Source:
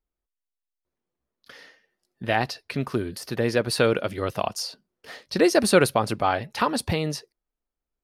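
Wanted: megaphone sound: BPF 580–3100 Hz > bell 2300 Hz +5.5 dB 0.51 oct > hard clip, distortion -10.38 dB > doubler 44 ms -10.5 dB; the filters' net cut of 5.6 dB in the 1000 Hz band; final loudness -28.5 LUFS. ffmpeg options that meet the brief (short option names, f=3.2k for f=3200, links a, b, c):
-filter_complex "[0:a]highpass=580,lowpass=3.1k,equalizer=f=1k:t=o:g=-7,equalizer=f=2.3k:t=o:w=0.51:g=5.5,asoftclip=type=hard:threshold=-20dB,asplit=2[a][b];[b]adelay=44,volume=-10.5dB[c];[a][c]amix=inputs=2:normalize=0,volume=2.5dB"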